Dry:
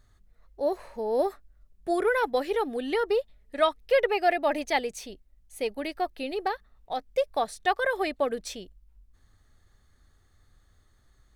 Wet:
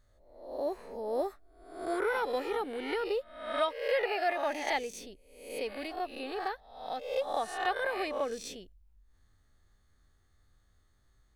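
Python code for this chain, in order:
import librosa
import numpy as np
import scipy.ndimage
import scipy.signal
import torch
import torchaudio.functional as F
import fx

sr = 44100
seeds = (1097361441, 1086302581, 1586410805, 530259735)

y = fx.spec_swells(x, sr, rise_s=0.69)
y = fx.low_shelf(y, sr, hz=190.0, db=-7.5, at=(3.62, 4.71))
y = y * 10.0 ** (-8.0 / 20.0)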